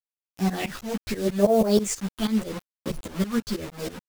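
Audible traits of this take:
phaser sweep stages 6, 0.82 Hz, lowest notch 530–4,200 Hz
a quantiser's noise floor 6 bits, dither none
tremolo saw up 6.2 Hz, depth 95%
a shimmering, thickened sound

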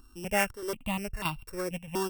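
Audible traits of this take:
a buzz of ramps at a fixed pitch in blocks of 16 samples
chopped level 1.6 Hz, depth 65%, duty 85%
notches that jump at a steady rate 4.1 Hz 580–1,800 Hz

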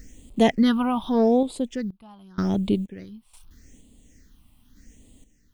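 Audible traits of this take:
a quantiser's noise floor 10 bits, dither none
phaser sweep stages 6, 0.83 Hz, lowest notch 450–1,600 Hz
sample-and-hold tremolo 2.1 Hz, depth 95%

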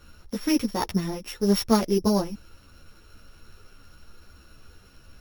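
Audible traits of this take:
a buzz of ramps at a fixed pitch in blocks of 8 samples
a shimmering, thickened sound

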